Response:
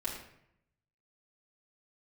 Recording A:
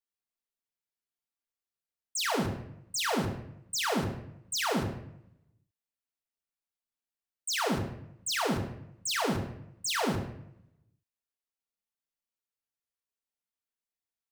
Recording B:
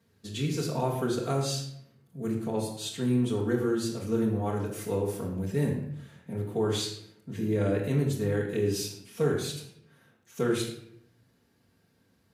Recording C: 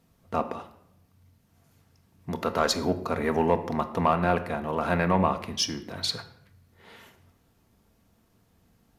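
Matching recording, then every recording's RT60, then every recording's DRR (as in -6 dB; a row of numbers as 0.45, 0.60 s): B; 0.75, 0.75, 0.75 s; -0.5, -7.0, 7.5 dB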